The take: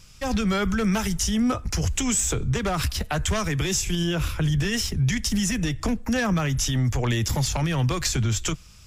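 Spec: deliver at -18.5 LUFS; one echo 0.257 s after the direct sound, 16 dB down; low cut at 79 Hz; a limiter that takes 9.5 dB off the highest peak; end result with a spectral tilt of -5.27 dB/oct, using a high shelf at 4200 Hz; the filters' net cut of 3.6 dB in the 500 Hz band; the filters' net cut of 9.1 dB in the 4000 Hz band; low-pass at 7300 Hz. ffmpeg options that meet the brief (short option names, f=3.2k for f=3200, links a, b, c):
-af "highpass=79,lowpass=7.3k,equalizer=f=500:t=o:g=-4.5,equalizer=f=4k:t=o:g=-7,highshelf=f=4.2k:g=-8.5,alimiter=level_in=0.5dB:limit=-24dB:level=0:latency=1,volume=-0.5dB,aecho=1:1:257:0.158,volume=13.5dB"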